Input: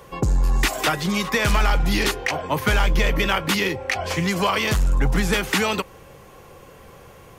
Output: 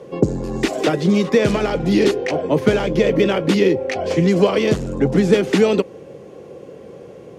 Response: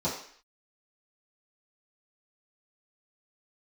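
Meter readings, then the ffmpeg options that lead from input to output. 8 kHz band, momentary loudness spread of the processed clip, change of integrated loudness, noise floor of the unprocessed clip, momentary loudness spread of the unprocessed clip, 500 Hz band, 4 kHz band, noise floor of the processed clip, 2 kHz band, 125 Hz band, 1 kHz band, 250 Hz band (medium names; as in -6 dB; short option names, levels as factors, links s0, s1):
-5.0 dB, 6 LU, +4.0 dB, -46 dBFS, 4 LU, +11.0 dB, -3.0 dB, -39 dBFS, -4.0 dB, +2.0 dB, -2.5 dB, +9.0 dB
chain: -af "highpass=180,lowpass=7400,lowshelf=f=690:t=q:w=1.5:g=12,volume=0.75"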